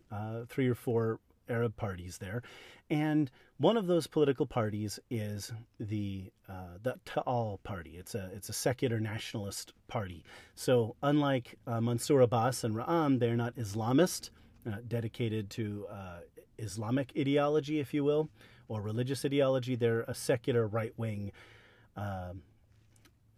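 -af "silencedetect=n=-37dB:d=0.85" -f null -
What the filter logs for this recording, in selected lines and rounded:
silence_start: 22.31
silence_end: 23.37 | silence_duration: 1.06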